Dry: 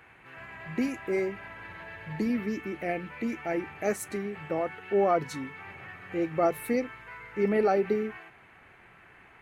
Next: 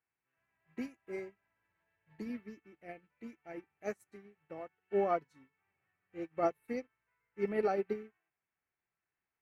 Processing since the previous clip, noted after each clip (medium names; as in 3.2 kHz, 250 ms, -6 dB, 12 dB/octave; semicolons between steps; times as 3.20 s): upward expansion 2.5:1, over -43 dBFS; trim -5 dB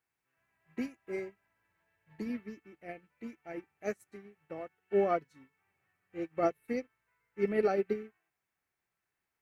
dynamic bell 920 Hz, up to -7 dB, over -52 dBFS, Q 2.2; trim +4 dB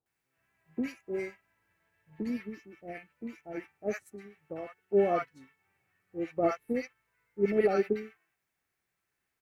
bands offset in time lows, highs 60 ms, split 910 Hz; trim +3.5 dB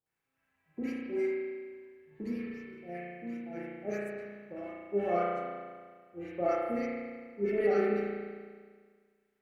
spring tank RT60 1.7 s, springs 34 ms, chirp 50 ms, DRR -4.5 dB; trim -6 dB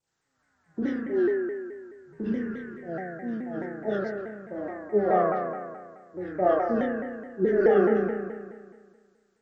knee-point frequency compression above 1.1 kHz 1.5:1; vibrato with a chosen wave saw down 4.7 Hz, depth 160 cents; trim +7.5 dB